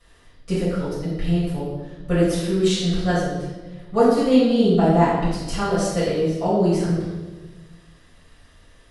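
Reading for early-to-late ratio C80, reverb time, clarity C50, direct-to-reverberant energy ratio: 2.5 dB, 1.3 s, 0.0 dB, -12.0 dB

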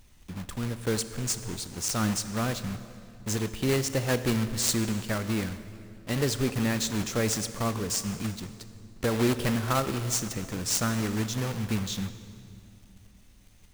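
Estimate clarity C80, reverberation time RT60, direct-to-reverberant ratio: 13.0 dB, 2.5 s, 11.5 dB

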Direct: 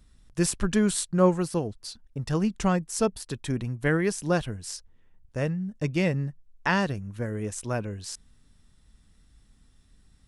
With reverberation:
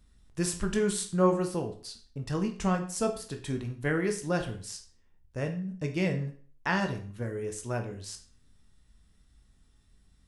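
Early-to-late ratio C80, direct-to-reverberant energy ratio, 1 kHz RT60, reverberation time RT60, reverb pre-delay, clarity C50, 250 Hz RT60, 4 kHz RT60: 15.0 dB, 4.0 dB, 0.45 s, 0.45 s, 16 ms, 10.5 dB, 0.40 s, 0.40 s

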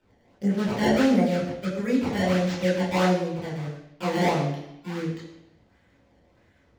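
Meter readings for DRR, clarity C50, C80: -7.5 dB, 4.0 dB, 6.0 dB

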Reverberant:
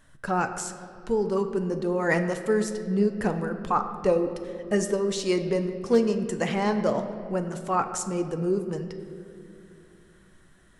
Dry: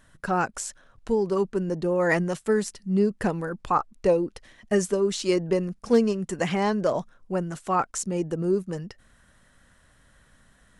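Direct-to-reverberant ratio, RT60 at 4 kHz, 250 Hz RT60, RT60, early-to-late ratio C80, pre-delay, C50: 6.5 dB, 1.5 s, 3.8 s, 2.5 s, 10.0 dB, 7 ms, 9.0 dB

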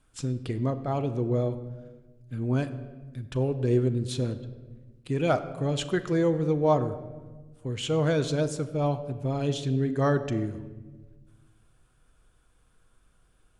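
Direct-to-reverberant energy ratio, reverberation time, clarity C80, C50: 9.0 dB, 1.3 s, 14.0 dB, 13.0 dB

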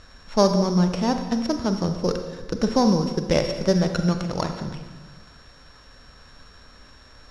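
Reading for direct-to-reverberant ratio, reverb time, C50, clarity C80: 6.0 dB, 1.4 s, 7.5 dB, 8.5 dB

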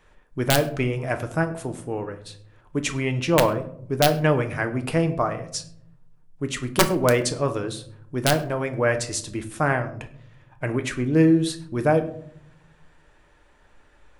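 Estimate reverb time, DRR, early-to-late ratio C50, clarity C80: 0.65 s, 6.5 dB, 13.5 dB, 16.5 dB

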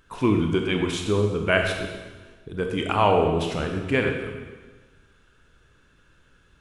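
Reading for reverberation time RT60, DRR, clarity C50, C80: 1.4 s, 2.5 dB, 4.0 dB, 5.5 dB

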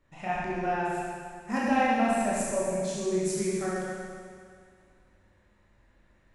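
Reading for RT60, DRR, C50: 2.1 s, -7.0 dB, -3.0 dB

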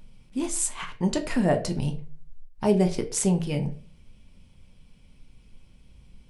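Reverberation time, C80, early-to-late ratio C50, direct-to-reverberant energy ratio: 0.40 s, 17.0 dB, 13.0 dB, 5.0 dB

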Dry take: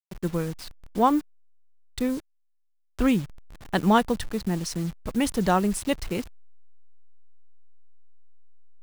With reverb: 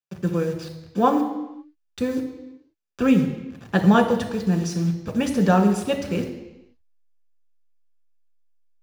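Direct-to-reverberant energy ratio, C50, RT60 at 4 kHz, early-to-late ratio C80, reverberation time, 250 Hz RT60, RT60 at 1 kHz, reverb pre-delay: 3.0 dB, 8.5 dB, 1.0 s, 10.0 dB, 1.0 s, 1.1 s, 1.0 s, 3 ms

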